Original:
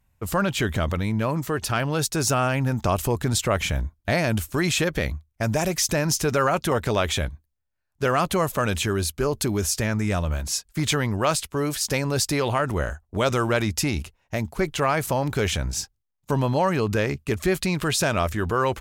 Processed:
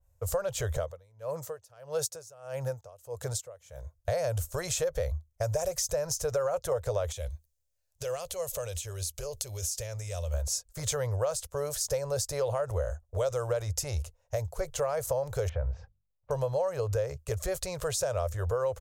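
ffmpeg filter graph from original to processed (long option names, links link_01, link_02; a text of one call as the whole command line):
ffmpeg -i in.wav -filter_complex "[0:a]asettb=1/sr,asplit=3[link_01][link_02][link_03];[link_01]atrim=end=0.774[link_04];[link_02]atrim=start=0.77:end=3.95,asetpts=PTS-STARTPTS,afade=type=in:duration=0.004:curve=qsin,afade=type=out:start_time=3.176:duration=0.004:curve=qsin,highpass=130,aeval=exprs='val(0)*pow(10,-28*(0.5-0.5*cos(2*PI*1.6*n/s))/20)':channel_layout=same[link_05];[link_03]atrim=start=3.946[link_06];[link_04][link_05]acrossfade=duration=0.004:curve1=hsin:curve2=qsin[link_07];[link_07][link_06]acrossfade=duration=0.004:curve1=qsin:curve2=hsin,asettb=1/sr,asplit=3[link_08][link_09][link_10];[link_08]atrim=end=7.124[link_11];[link_09]atrim=start=7.12:end=10.34,asetpts=PTS-STARTPTS,afade=type=in:duration=0.004:curve=qsin,afade=type=out:start_time=3.216:duration=0.004:curve=qsin,highshelf=frequency=1900:width_type=q:width=1.5:gain=8.5,acompressor=threshold=-27dB:ratio=16:attack=3.2:release=140:knee=1:detection=peak[link_12];[link_10]atrim=start=10.336[link_13];[link_11][link_12]acrossfade=duration=0.004:curve1=hsin:curve2=qsin[link_14];[link_14][link_13]acrossfade=duration=0.004:curve1=qsin:curve2=hsin,asettb=1/sr,asplit=3[link_15][link_16][link_17];[link_15]atrim=end=15.494[link_18];[link_16]atrim=start=15.49:end=16.31,asetpts=PTS-STARTPTS,afade=type=in:duration=0.004:curve=qsin,afade=type=out:start_time=0.816:duration=0.004:curve=qsin,lowpass=frequency=2200:width=0.5412,lowpass=frequency=2200:width=1.3066,bandreject=frequency=47.96:width_type=h:width=4,bandreject=frequency=95.92:width_type=h:width=4,bandreject=frequency=143.88:width_type=h:width=4,bandreject=frequency=191.84:width_type=h:width=4,bandreject=frequency=239.8:width_type=h:width=4[link_19];[link_17]atrim=start=16.306[link_20];[link_18][link_19]acrossfade=duration=0.004:curve1=hsin:curve2=qsin[link_21];[link_21][link_20]acrossfade=duration=0.004:curve1=qsin:curve2=hsin,firequalizer=gain_entry='entry(100,0);entry(210,-28);entry(300,-27);entry(500,6);entry(810,-7);entry(1300,-9);entry(2300,-15);entry(6400,1);entry(10000,-2)':delay=0.05:min_phase=1,acompressor=threshold=-26dB:ratio=6,adynamicequalizer=threshold=0.00501:dfrequency=1700:dqfactor=0.7:tfrequency=1700:tqfactor=0.7:attack=5:release=100:ratio=0.375:range=1.5:mode=cutabove:tftype=highshelf" out.wav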